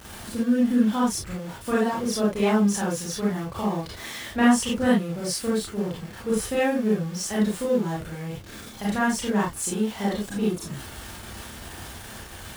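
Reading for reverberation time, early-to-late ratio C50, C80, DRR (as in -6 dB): not exponential, 0.5 dB, 10.5 dB, -6.5 dB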